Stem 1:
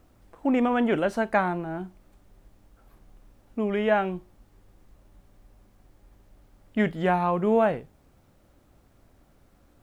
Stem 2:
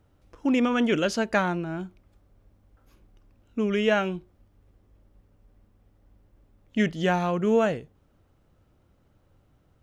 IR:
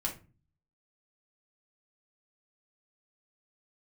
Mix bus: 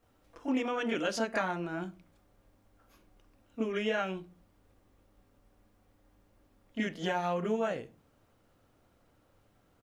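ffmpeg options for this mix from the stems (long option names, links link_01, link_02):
-filter_complex "[0:a]aecho=1:1:4.3:0.93,alimiter=limit=-13dB:level=0:latency=1:release=363,volume=-12.5dB[link_01];[1:a]acompressor=threshold=-28dB:ratio=4,adelay=27,volume=-2dB,asplit=2[link_02][link_03];[link_03]volume=-11.5dB[link_04];[2:a]atrim=start_sample=2205[link_05];[link_04][link_05]afir=irnorm=-1:irlink=0[link_06];[link_01][link_02][link_06]amix=inputs=3:normalize=0,lowshelf=frequency=220:gain=-10"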